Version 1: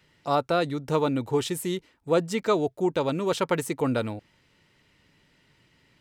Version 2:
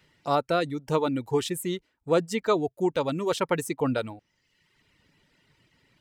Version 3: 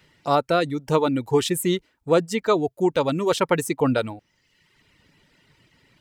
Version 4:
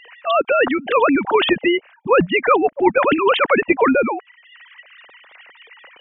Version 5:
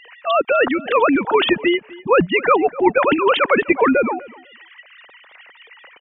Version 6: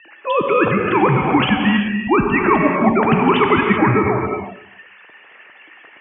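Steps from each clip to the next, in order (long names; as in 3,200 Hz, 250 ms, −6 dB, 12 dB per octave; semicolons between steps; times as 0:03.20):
reverb reduction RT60 0.91 s
speech leveller within 4 dB 0.5 s; level +5 dB
three sine waves on the formant tracks; every bin compressed towards the loudest bin 2 to 1; level +4.5 dB
repeating echo 250 ms, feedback 16%, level −21 dB
reverb whose tail is shaped and stops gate 410 ms flat, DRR 1 dB; single-sideband voice off tune −140 Hz 230–3,300 Hz; level −1 dB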